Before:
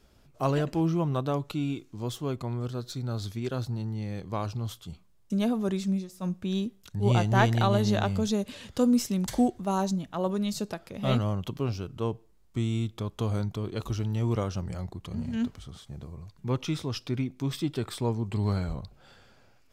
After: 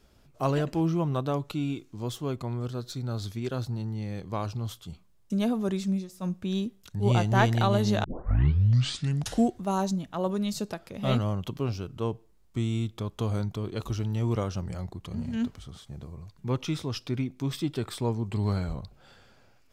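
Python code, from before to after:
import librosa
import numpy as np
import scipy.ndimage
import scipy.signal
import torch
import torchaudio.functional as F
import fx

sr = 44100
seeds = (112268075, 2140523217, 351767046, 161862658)

y = fx.edit(x, sr, fx.tape_start(start_s=8.04, length_s=1.46), tone=tone)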